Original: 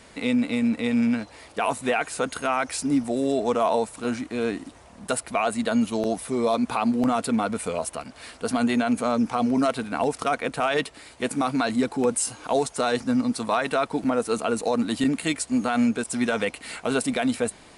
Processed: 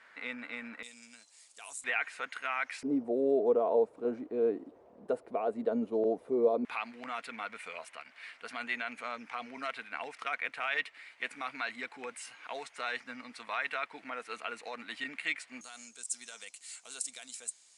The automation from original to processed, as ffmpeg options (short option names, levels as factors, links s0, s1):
-af "asetnsamples=n=441:p=0,asendcmd='0.83 bandpass f 7500;1.84 bandpass f 2000;2.83 bandpass f 440;6.65 bandpass f 2100;15.61 bandpass f 7100',bandpass=f=1600:t=q:w=2.7:csg=0"